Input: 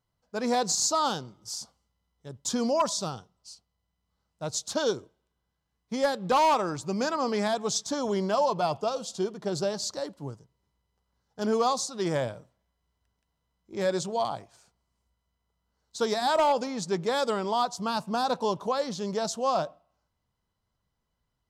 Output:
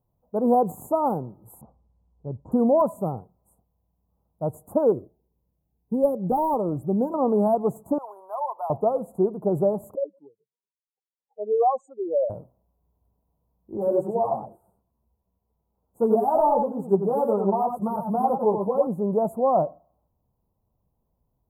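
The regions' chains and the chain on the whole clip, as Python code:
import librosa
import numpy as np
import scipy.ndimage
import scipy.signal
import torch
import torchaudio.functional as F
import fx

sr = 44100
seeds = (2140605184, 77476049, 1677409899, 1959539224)

y = fx.chain(x, sr, fx.lowpass(hz=3500.0, slope=24),
    fx.low_shelf(hz=100.0, db=8.5), at=(1.61, 2.52))
y = fx.chain(y, sr, fx.peak_eq(hz=1800.0, db=-9.0, octaves=1.5),
    fx.notch_cascade(direction='rising', hz=1.7), at=(4.92, 7.14))
y = fx.chain(y, sr, fx.highpass(hz=910.0, slope=24),
    fx.peak_eq(hz=4100.0, db=-13.0, octaves=1.8), at=(7.98, 8.7))
y = fx.chain(y, sr, fx.spec_expand(power=3.1),
    fx.highpass(hz=450.0, slope=24), at=(9.95, 12.3))
y = fx.chain(y, sr, fx.echo_single(ms=94, db=-5.5),
    fx.ensemble(), at=(13.77, 18.87))
y = scipy.signal.sosfilt(scipy.signal.cheby2(4, 70, [2400.0, 5400.0], 'bandstop', fs=sr, output='sos'), y)
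y = fx.band_shelf(y, sr, hz=3100.0, db=-16.0, octaves=1.7)
y = y * 10.0 ** (7.5 / 20.0)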